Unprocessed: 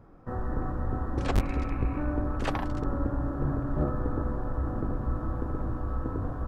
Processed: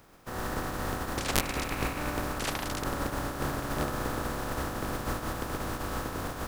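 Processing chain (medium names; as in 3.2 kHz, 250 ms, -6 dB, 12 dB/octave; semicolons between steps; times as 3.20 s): spectral contrast reduction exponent 0.42; trim -4 dB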